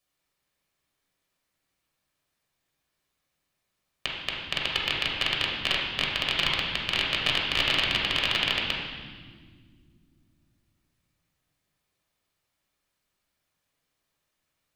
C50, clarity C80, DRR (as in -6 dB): 1.0 dB, 3.0 dB, -3.5 dB